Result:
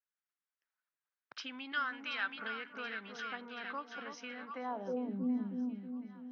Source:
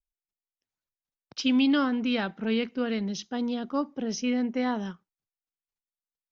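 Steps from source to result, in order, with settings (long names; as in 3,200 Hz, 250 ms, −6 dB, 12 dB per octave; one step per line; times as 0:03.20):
0:01.72–0:02.37: tilt shelving filter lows −8.5 dB, about 1,200 Hz
echo with a time of its own for lows and highs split 1,100 Hz, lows 319 ms, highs 727 ms, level −7.5 dB
downward compressor 4 to 1, threshold −35 dBFS, peak gain reduction 13 dB
band-pass filter sweep 1,500 Hz → 240 Hz, 0:04.47–0:05.20
level +8 dB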